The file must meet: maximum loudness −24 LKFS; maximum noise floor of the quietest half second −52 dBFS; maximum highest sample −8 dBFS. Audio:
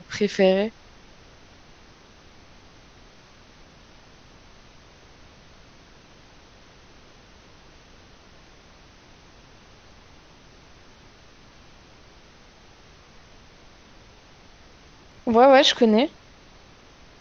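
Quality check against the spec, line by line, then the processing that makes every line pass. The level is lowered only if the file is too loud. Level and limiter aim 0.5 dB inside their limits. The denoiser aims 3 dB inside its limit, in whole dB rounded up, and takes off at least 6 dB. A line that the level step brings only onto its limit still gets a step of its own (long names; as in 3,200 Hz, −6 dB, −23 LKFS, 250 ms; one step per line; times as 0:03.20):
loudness −19.0 LKFS: out of spec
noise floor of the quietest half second −51 dBFS: out of spec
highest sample −5.0 dBFS: out of spec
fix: level −5.5 dB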